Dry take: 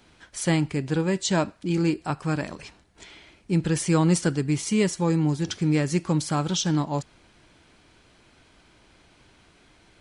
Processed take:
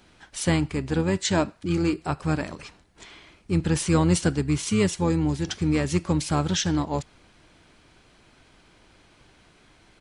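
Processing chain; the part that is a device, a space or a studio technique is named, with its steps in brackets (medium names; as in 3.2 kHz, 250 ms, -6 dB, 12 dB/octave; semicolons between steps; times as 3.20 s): octave pedal (harmony voices -12 st -8 dB)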